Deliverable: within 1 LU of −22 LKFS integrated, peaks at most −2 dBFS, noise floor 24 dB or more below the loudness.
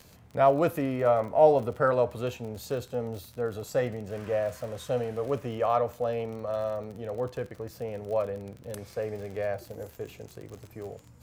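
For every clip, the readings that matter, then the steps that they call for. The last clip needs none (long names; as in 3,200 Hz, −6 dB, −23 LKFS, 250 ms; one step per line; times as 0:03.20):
crackle rate 41 per second; integrated loudness −29.0 LKFS; sample peak −8.0 dBFS; target loudness −22.0 LKFS
→ click removal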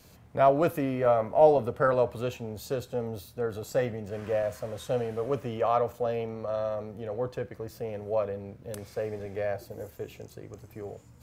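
crackle rate 0 per second; integrated loudness −29.0 LKFS; sample peak −8.0 dBFS; target loudness −22.0 LKFS
→ level +7 dB
brickwall limiter −2 dBFS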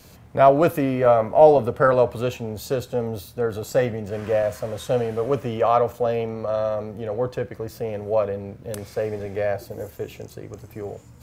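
integrated loudness −22.0 LKFS; sample peak −2.0 dBFS; background noise floor −47 dBFS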